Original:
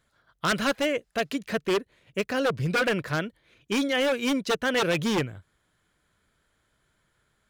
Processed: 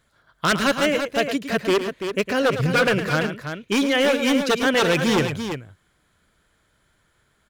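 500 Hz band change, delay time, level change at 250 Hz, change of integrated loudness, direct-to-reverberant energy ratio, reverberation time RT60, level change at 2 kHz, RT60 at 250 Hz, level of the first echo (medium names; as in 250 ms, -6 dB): +6.0 dB, 108 ms, +6.0 dB, +5.5 dB, no reverb, no reverb, +6.0 dB, no reverb, -10.5 dB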